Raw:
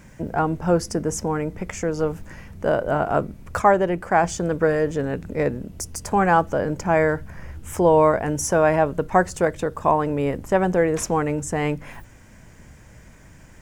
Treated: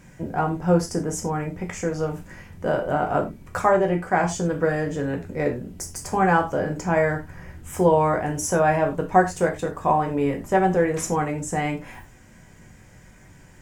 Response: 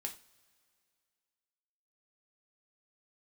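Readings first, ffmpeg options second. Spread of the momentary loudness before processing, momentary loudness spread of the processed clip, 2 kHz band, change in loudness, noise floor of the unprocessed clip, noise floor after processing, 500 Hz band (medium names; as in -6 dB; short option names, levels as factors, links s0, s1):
11 LU, 11 LU, -0.5 dB, -1.5 dB, -47 dBFS, -49 dBFS, -2.0 dB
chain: -filter_complex "[1:a]atrim=start_sample=2205,atrim=end_sample=4410,asetrate=40131,aresample=44100[s0];[0:a][s0]afir=irnorm=-1:irlink=0"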